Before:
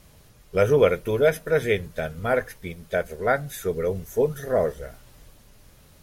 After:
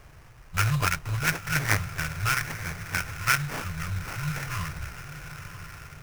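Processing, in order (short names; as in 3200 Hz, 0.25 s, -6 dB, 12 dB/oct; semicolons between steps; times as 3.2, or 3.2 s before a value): brick-wall FIR band-stop 170–1000 Hz; diffused feedback echo 0.974 s, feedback 53%, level -11.5 dB; sample-rate reducer 3900 Hz, jitter 20%; gain +3.5 dB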